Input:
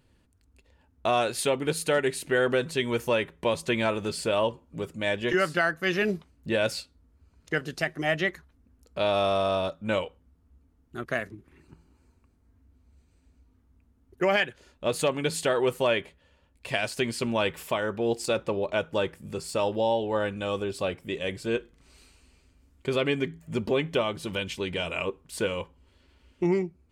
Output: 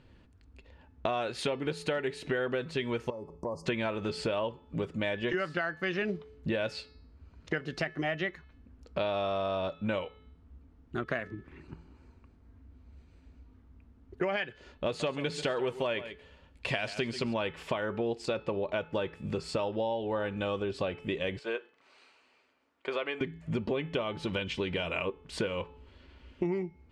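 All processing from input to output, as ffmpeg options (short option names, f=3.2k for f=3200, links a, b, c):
-filter_complex "[0:a]asettb=1/sr,asplit=3[a][b][c];[a]atrim=end=3.104[d];[b]atrim=start=3.1:end=3.66,asetpts=PTS-STARTPTS,afade=t=in:d=0.004:c=qsin,afade=t=out:st=0.556:d=0.004:c=qsin,asuperstop=centerf=2400:order=20:qfactor=0.67,acompressor=threshold=-47dB:ratio=2:attack=3.2:release=140:knee=1:detection=peak[e];[c]atrim=start=3.656[f];[d][e]acrossfade=d=0.004:c1=hsin:c2=qsin[g];[g][f]acrossfade=d=0.004:c1=qsin:c2=hsin,asettb=1/sr,asplit=3[h][i][j];[h]atrim=end=14.864[k];[i]atrim=start=14.86:end=17.34,asetpts=PTS-STARTPTS,afade=t=in:d=0.004:c=qsin,afade=t=out:st=2.476:d=0.004:c=qsin,acrossover=split=7900[l][m];[m]acompressor=threshold=-52dB:ratio=4:attack=1:release=60[n];[l][n]amix=inputs=2:normalize=0,highshelf=f=6.7k:g=10.5,aecho=1:1:137:0.158,atrim=end_sample=109368[o];[j]atrim=start=17.336[p];[k][o]acrossfade=d=0.004:c1=hsin:c2=qsin[q];[q][p]acrossfade=d=0.004:c1=qsin:c2=hsin,asettb=1/sr,asplit=3[r][s][t];[r]atrim=end=21.394[u];[s]atrim=start=21.39:end=23.21,asetpts=PTS-STARTPTS,afade=t=in:d=0.004:c=qsin,afade=t=out:st=1.816:d=0.004:c=qsin,highpass=680,highshelf=f=2.2k:g=-9[v];[t]atrim=start=23.206[w];[u][v]acrossfade=d=0.004:c1=hsin:c2=qsin[x];[x][w]acrossfade=d=0.004:c1=qsin:c2=hsin,lowpass=3.9k,bandreject=f=432.4:t=h:w=4,bandreject=f=864.8:t=h:w=4,bandreject=f=1.2972k:t=h:w=4,bandreject=f=1.7296k:t=h:w=4,bandreject=f=2.162k:t=h:w=4,bandreject=f=2.5944k:t=h:w=4,bandreject=f=3.0268k:t=h:w=4,bandreject=f=3.4592k:t=h:w=4,bandreject=f=3.8916k:t=h:w=4,bandreject=f=4.324k:t=h:w=4,bandreject=f=4.7564k:t=h:w=4,bandreject=f=5.1888k:t=h:w=4,bandreject=f=5.6212k:t=h:w=4,acompressor=threshold=-36dB:ratio=5,volume=6dB"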